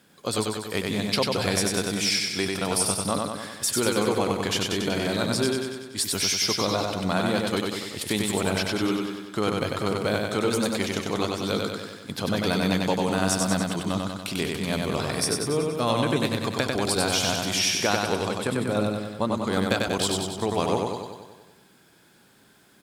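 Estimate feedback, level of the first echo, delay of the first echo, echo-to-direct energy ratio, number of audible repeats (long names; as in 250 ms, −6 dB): 60%, −3.0 dB, 95 ms, −1.0 dB, 8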